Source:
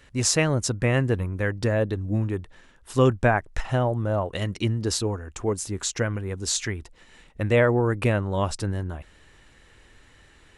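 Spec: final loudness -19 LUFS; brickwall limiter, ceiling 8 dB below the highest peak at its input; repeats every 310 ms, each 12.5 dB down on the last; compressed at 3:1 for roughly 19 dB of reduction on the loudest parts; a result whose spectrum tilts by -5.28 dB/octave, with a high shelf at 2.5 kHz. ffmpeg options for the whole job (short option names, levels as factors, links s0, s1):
-af "highshelf=f=2500:g=-6,acompressor=threshold=0.00794:ratio=3,alimiter=level_in=2.51:limit=0.0631:level=0:latency=1,volume=0.398,aecho=1:1:310|620|930:0.237|0.0569|0.0137,volume=15.8"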